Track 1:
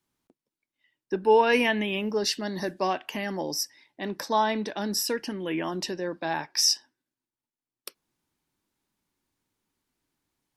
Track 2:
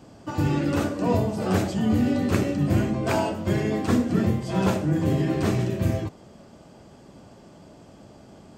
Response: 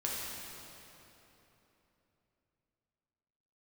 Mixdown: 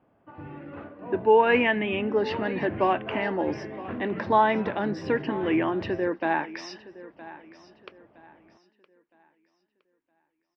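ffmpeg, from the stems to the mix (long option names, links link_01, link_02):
-filter_complex "[0:a]agate=range=-12dB:threshold=-43dB:ratio=16:detection=peak,equalizer=frequency=300:width=1.3:gain=8.5,volume=1dB,asplit=2[link_01][link_02];[link_02]volume=-17.5dB[link_03];[1:a]lowpass=frequency=1900:poles=1,volume=-10.5dB[link_04];[link_03]aecho=0:1:965|1930|2895|3860|4825:1|0.32|0.102|0.0328|0.0105[link_05];[link_01][link_04][link_05]amix=inputs=3:normalize=0,lowpass=frequency=2600:width=0.5412,lowpass=frequency=2600:width=1.3066,lowshelf=frequency=390:gain=-11,dynaudnorm=framelen=290:gausssize=13:maxgain=4dB"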